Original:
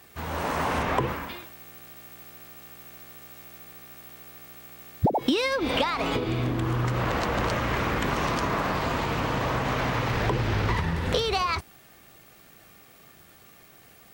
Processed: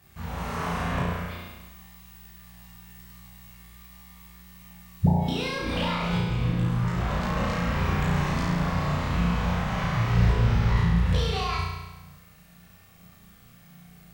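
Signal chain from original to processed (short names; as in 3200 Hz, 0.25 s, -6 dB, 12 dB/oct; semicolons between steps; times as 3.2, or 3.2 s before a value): resonant low shelf 230 Hz +7.5 dB, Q 3; chorus voices 6, 0.28 Hz, delay 20 ms, depth 2.7 ms; flutter echo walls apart 5.9 m, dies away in 1.1 s; gain -4.5 dB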